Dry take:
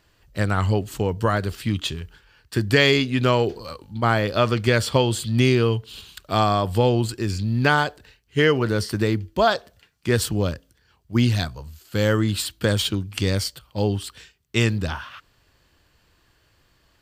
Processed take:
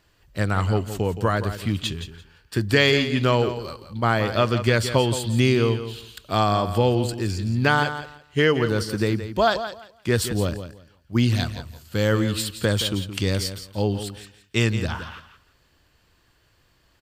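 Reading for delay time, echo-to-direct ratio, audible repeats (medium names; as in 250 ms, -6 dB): 170 ms, -11.0 dB, 2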